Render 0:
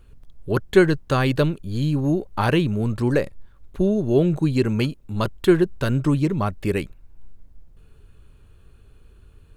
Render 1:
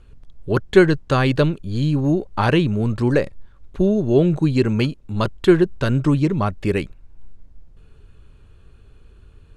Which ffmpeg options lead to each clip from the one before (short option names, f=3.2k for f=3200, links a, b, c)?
-af "lowpass=7.7k,volume=2.5dB"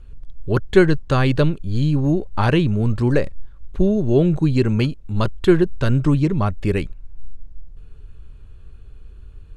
-af "lowshelf=f=82:g=11.5,volume=-1.5dB"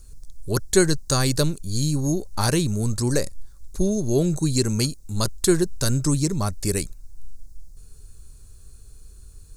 -af "aexciter=amount=15.8:drive=7.2:freq=4.7k,volume=-5dB"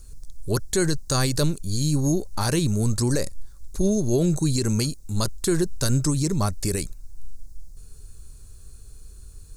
-af "alimiter=limit=-14dB:level=0:latency=1:release=34,volume=1.5dB"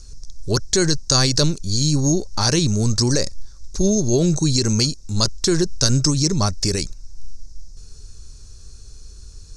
-af "lowpass=f=5.6k:t=q:w=4.6,volume=3.5dB"